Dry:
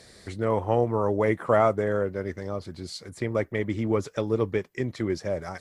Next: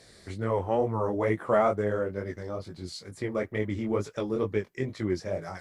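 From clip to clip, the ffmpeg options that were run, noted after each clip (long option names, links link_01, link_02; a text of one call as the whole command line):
ffmpeg -i in.wav -af "flanger=delay=18.5:depth=5:speed=2.2" out.wav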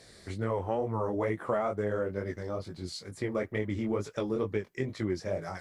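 ffmpeg -i in.wav -af "acompressor=threshold=-26dB:ratio=6" out.wav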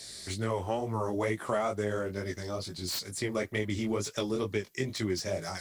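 ffmpeg -i in.wav -filter_complex "[0:a]bandreject=frequency=490:width=12,acrossover=split=400|3300[link_01][link_02][link_03];[link_03]aeval=exprs='0.0282*sin(PI/2*3.55*val(0)/0.0282)':channel_layout=same[link_04];[link_01][link_02][link_04]amix=inputs=3:normalize=0" out.wav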